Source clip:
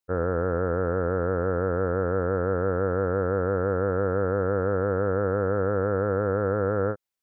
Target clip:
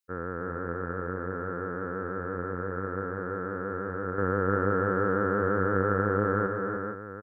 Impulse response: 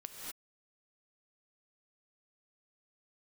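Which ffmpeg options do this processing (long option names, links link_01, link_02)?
-filter_complex "[0:a]highpass=frequency=310:poles=1,equalizer=frequency=620:width=1.2:gain=-14,asettb=1/sr,asplit=3[link_01][link_02][link_03];[link_01]atrim=end=4.184[link_04];[link_02]atrim=start=4.18:end=6.47,asetpts=PTS-STARTPTS,afade=type=in:duration=0.004:curve=qsin,afade=type=out:start_time=2.286:duration=0.004:curve=qsin,acontrast=80[link_05];[link_03]atrim=start=6.466[link_06];[link_04][link_05]acrossfade=duration=0.004:curve1=hsin:curve2=qsin[link_07];[link_07][link_06]acrossfade=duration=0.004:curve1=qsin:curve2=hsin,aecho=1:1:303:0.473"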